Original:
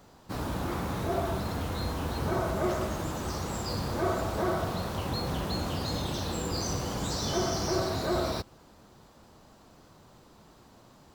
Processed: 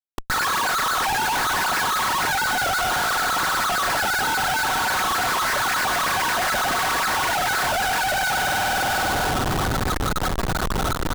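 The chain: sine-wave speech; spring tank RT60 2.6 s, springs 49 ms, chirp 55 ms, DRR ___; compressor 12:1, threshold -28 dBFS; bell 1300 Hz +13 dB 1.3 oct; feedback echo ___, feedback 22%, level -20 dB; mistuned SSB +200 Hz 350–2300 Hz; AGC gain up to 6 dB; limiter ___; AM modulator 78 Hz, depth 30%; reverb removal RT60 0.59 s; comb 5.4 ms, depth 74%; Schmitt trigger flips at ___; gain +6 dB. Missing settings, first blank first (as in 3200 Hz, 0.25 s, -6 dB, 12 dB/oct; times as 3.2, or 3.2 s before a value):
4.5 dB, 0.378 s, -16.5 dBFS, -41.5 dBFS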